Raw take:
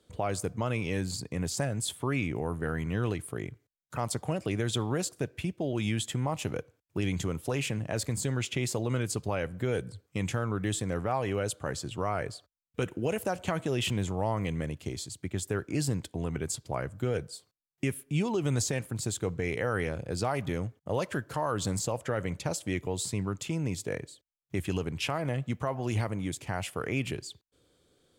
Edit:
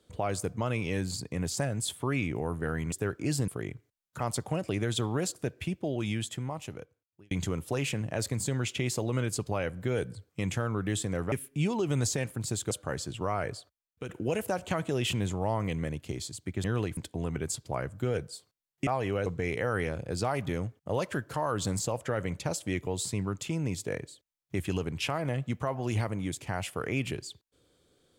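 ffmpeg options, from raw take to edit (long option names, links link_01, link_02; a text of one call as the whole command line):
ffmpeg -i in.wav -filter_complex "[0:a]asplit=11[link_01][link_02][link_03][link_04][link_05][link_06][link_07][link_08][link_09][link_10][link_11];[link_01]atrim=end=2.922[link_12];[link_02]atrim=start=15.408:end=15.972[link_13];[link_03]atrim=start=3.248:end=7.08,asetpts=PTS-STARTPTS,afade=type=out:start_time=2.342:duration=1.49[link_14];[link_04]atrim=start=7.08:end=11.092,asetpts=PTS-STARTPTS,afade=type=in:duration=0.004:curve=hsin[link_15];[link_05]atrim=start=17.868:end=19.262[link_16];[link_06]atrim=start=11.478:end=12.86,asetpts=PTS-STARTPTS,afade=type=out:start_time=0.872:duration=0.51:silence=0.316228[link_17];[link_07]atrim=start=12.86:end=15.412,asetpts=PTS-STARTPTS,afade=type=in:duration=0.004:curve=hsin:silence=0.316228[link_18];[link_08]atrim=start=2.918:end=3.252[link_19];[link_09]atrim=start=15.968:end=17.872[link_20];[link_10]atrim=start=11.088:end=11.482[link_21];[link_11]atrim=start=19.258[link_22];[link_12][link_13]acrossfade=duration=0.004:curve1=hsin:curve2=hsin[link_23];[link_14][link_15]concat=n=2:v=0:a=1[link_24];[link_23][link_24]acrossfade=duration=0.004:curve1=hsin:curve2=hsin[link_25];[link_25][link_16]acrossfade=duration=0.004:curve1=hsin:curve2=hsin[link_26];[link_17][link_18]concat=n=2:v=0:a=1[link_27];[link_26][link_27]acrossfade=duration=0.004:curve1=hsin:curve2=hsin[link_28];[link_28][link_19]acrossfade=duration=0.004:curve1=hsin:curve2=hsin[link_29];[link_29][link_20]acrossfade=duration=0.004:curve1=hsin:curve2=hsin[link_30];[link_30][link_21]acrossfade=duration=0.004:curve1=hsin:curve2=hsin[link_31];[link_31][link_22]acrossfade=duration=0.004:curve1=hsin:curve2=hsin" out.wav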